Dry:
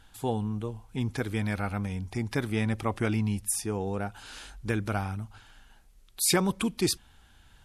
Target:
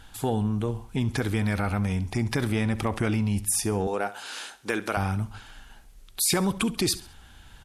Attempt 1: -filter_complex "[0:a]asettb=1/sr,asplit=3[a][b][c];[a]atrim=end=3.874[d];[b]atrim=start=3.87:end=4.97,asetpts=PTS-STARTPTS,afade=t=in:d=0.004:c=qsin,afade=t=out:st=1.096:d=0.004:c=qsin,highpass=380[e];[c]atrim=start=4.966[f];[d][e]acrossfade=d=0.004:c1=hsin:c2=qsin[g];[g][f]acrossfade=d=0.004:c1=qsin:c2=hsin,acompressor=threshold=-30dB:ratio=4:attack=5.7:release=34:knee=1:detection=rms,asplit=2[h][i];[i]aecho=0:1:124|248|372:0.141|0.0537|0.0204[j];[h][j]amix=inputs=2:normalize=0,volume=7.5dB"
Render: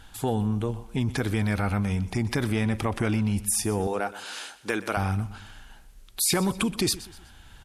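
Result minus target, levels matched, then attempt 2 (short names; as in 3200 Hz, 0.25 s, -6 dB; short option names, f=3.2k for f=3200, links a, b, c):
echo 56 ms late
-filter_complex "[0:a]asettb=1/sr,asplit=3[a][b][c];[a]atrim=end=3.874[d];[b]atrim=start=3.87:end=4.97,asetpts=PTS-STARTPTS,afade=t=in:d=0.004:c=qsin,afade=t=out:st=1.096:d=0.004:c=qsin,highpass=380[e];[c]atrim=start=4.966[f];[d][e]acrossfade=d=0.004:c1=hsin:c2=qsin[g];[g][f]acrossfade=d=0.004:c1=qsin:c2=hsin,acompressor=threshold=-30dB:ratio=4:attack=5.7:release=34:knee=1:detection=rms,asplit=2[h][i];[i]aecho=0:1:68|136|204:0.141|0.0537|0.0204[j];[h][j]amix=inputs=2:normalize=0,volume=7.5dB"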